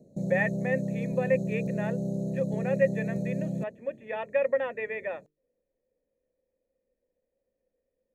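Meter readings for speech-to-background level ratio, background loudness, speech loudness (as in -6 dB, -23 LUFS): 0.5 dB, -32.0 LUFS, -31.5 LUFS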